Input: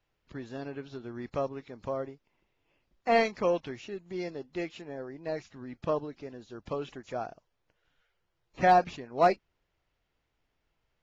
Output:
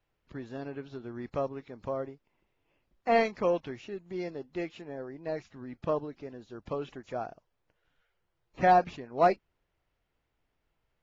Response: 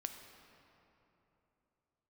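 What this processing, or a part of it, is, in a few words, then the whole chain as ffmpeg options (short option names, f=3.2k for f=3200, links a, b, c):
behind a face mask: -af "highshelf=f=3.4k:g=-6.5"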